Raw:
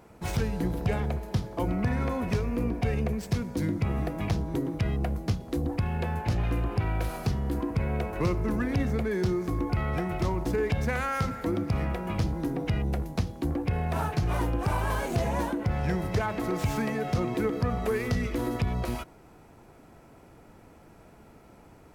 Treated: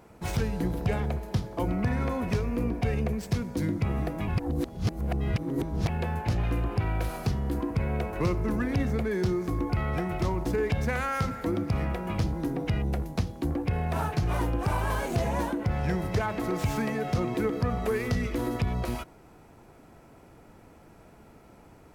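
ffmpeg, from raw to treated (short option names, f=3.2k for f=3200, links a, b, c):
-filter_complex "[0:a]asplit=3[a][b][c];[a]atrim=end=4.282[d];[b]atrim=start=4.278:end=5.892,asetpts=PTS-STARTPTS,areverse[e];[c]atrim=start=5.888[f];[d][e]acrossfade=d=0.004:c1=hsin:c2=hsin[g];[g][f]acrossfade=d=0.004:c1=hsin:c2=hsin"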